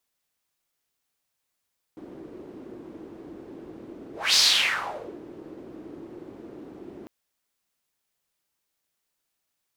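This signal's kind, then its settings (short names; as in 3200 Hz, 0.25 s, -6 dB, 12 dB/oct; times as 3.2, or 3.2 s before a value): whoosh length 5.10 s, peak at 2.39, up 0.24 s, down 0.88 s, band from 330 Hz, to 4700 Hz, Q 4, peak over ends 24.5 dB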